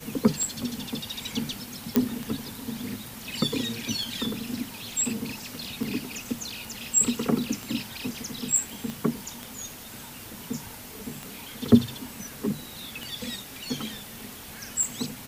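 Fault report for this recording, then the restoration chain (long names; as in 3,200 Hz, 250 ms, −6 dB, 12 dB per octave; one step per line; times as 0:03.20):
scratch tick 33 1/3 rpm
0:01.96: click −5 dBFS
0:08.90: click −20 dBFS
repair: click removal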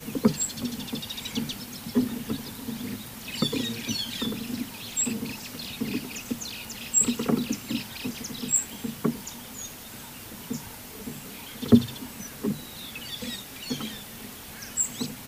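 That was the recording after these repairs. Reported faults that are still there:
0:08.90: click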